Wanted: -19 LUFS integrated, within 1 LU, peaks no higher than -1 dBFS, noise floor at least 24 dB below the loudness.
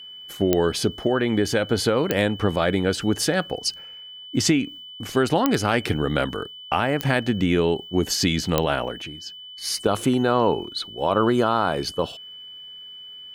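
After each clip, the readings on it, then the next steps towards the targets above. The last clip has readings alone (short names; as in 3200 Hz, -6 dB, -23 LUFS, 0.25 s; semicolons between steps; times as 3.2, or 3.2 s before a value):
clicks 5; steady tone 3000 Hz; tone level -38 dBFS; loudness -23.0 LUFS; peak -4.0 dBFS; loudness target -19.0 LUFS
-> de-click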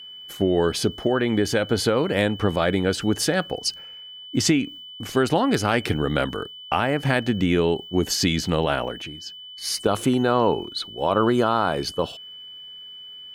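clicks 0; steady tone 3000 Hz; tone level -38 dBFS
-> notch 3000 Hz, Q 30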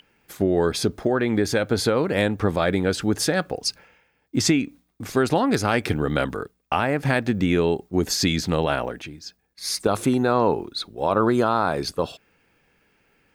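steady tone none; loudness -23.0 LUFS; peak -7.0 dBFS; loudness target -19.0 LUFS
-> gain +4 dB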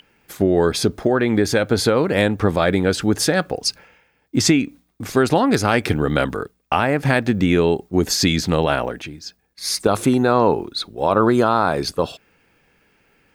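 loudness -19.0 LUFS; peak -3.0 dBFS; noise floor -64 dBFS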